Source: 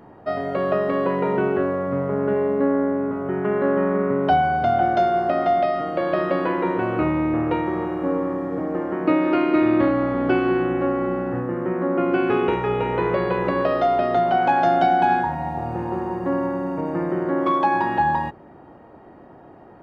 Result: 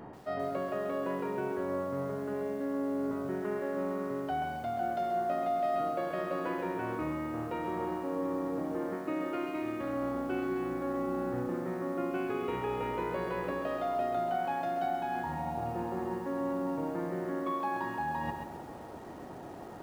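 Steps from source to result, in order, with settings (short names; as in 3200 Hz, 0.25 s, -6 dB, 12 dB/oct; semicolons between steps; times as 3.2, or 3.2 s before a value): reverse; compressor 8:1, threshold -32 dBFS, peak gain reduction 18 dB; reverse; narrowing echo 0.192 s, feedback 82%, band-pass 1200 Hz, level -19.5 dB; lo-fi delay 0.133 s, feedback 35%, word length 9-bit, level -6 dB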